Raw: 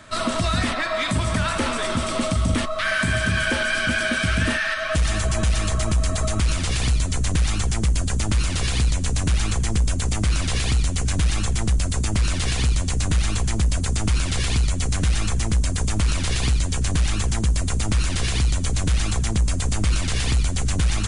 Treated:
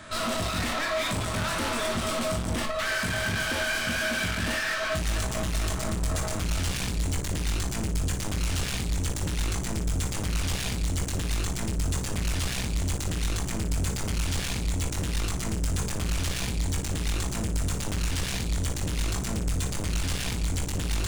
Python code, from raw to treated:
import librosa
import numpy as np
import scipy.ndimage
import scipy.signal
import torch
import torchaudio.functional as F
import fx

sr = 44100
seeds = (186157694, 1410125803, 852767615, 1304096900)

p1 = np.clip(x, -10.0 ** (-28.0 / 20.0), 10.0 ** (-28.0 / 20.0))
y = p1 + fx.room_early_taps(p1, sr, ms=(22, 58), db=(-6.5, -8.5), dry=0)